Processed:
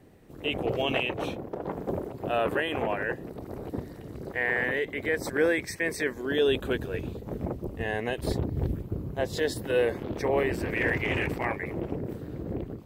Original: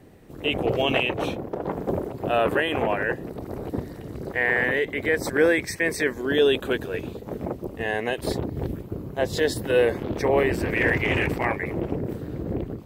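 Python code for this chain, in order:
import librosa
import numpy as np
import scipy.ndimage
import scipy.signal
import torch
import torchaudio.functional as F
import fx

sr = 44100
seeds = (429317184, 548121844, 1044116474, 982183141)

y = fx.low_shelf(x, sr, hz=150.0, db=10.0, at=(6.48, 9.22))
y = y * 10.0 ** (-5.0 / 20.0)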